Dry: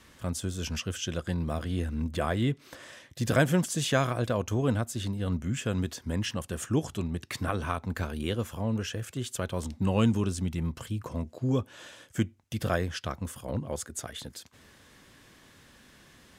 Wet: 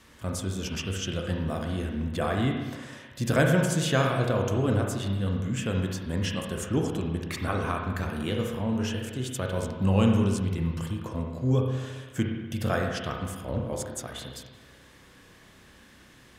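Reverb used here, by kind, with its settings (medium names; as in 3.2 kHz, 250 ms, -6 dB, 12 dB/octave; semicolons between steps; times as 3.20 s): spring tank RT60 1.3 s, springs 31/60 ms, chirp 60 ms, DRR 1 dB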